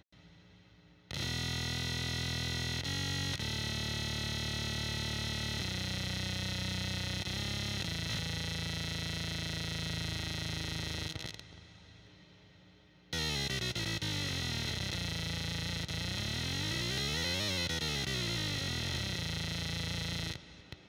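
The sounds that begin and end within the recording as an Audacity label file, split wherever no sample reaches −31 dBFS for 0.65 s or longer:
1.110000	11.390000	sound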